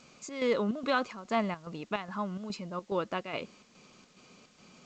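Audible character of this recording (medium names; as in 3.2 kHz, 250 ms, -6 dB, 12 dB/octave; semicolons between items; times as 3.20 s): chopped level 2.4 Hz, depth 60%, duty 70%; a quantiser's noise floor 10-bit, dither triangular; G.722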